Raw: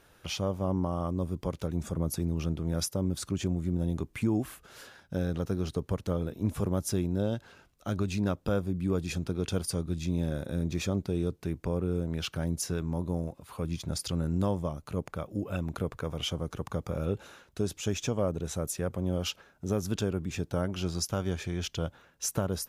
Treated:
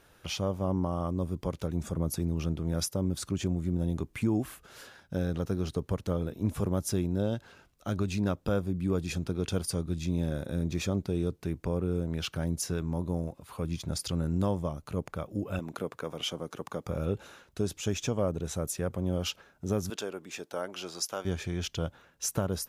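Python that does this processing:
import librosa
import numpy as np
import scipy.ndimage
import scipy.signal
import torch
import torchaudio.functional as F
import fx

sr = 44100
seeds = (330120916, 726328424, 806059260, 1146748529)

y = fx.highpass(x, sr, hz=220.0, slope=12, at=(15.59, 16.86))
y = fx.highpass(y, sr, hz=450.0, slope=12, at=(19.9, 21.25))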